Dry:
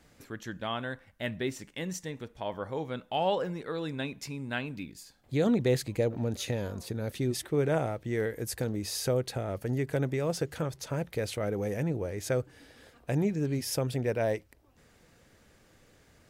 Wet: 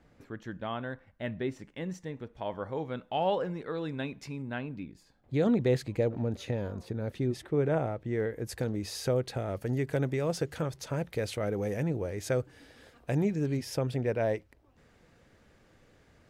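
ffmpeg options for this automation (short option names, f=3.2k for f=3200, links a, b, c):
-af "asetnsamples=n=441:p=0,asendcmd='2.33 lowpass f 2600;4.42 lowpass f 1100;5.34 lowpass f 2700;6.22 lowpass f 1600;8.49 lowpass f 4200;9.37 lowpass f 8200;13.57 lowpass f 3100',lowpass=f=1.4k:p=1"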